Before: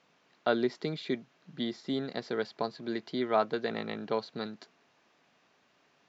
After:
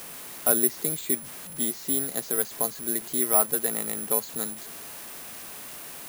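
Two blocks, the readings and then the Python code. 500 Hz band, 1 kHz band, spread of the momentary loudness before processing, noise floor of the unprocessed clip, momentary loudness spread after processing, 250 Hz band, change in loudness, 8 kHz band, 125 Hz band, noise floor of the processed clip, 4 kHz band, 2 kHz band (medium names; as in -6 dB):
0.0 dB, 0.0 dB, 10 LU, -69 dBFS, 17 LU, 0.0 dB, +9.0 dB, no reading, +0.5 dB, -41 dBFS, +1.5 dB, +1.0 dB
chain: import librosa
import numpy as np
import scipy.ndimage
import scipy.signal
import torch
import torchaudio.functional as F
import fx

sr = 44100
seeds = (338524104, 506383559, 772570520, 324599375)

y = fx.delta_mod(x, sr, bps=64000, step_db=-40.5)
y = (np.kron(y[::4], np.eye(4)[0]) * 4)[:len(y)]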